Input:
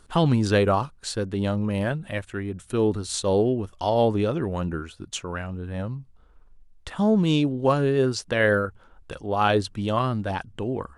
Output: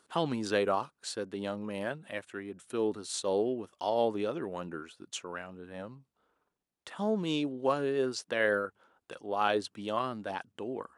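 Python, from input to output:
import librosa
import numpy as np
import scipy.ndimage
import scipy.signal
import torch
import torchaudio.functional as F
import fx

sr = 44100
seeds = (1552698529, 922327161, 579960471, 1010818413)

y = scipy.signal.sosfilt(scipy.signal.butter(2, 270.0, 'highpass', fs=sr, output='sos'), x)
y = y * librosa.db_to_amplitude(-7.0)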